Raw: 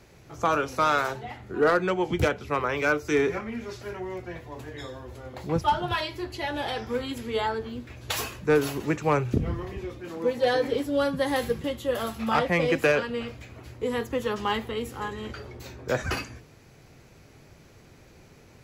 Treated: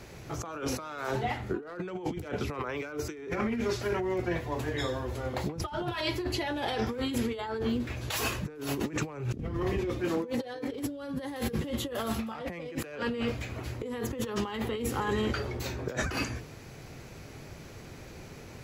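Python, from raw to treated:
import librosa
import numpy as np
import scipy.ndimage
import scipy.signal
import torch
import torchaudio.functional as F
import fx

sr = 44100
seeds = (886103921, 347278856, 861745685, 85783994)

y = fx.dynamic_eq(x, sr, hz=300.0, q=1.2, threshold_db=-39.0, ratio=4.0, max_db=4)
y = fx.over_compress(y, sr, threshold_db=-34.0, ratio=-1.0)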